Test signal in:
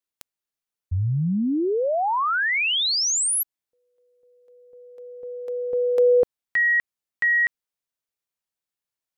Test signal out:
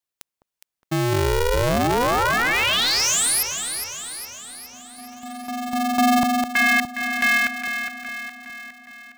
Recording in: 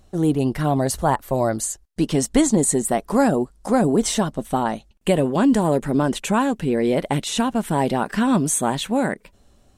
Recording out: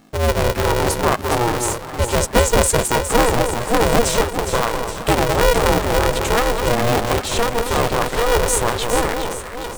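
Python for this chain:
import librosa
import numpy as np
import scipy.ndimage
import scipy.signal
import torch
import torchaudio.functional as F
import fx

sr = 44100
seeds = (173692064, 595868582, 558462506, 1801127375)

y = fx.echo_alternate(x, sr, ms=206, hz=950.0, feedback_pct=74, wet_db=-5.5)
y = y * np.sign(np.sin(2.0 * np.pi * 240.0 * np.arange(len(y)) / sr))
y = y * librosa.db_to_amplitude(1.5)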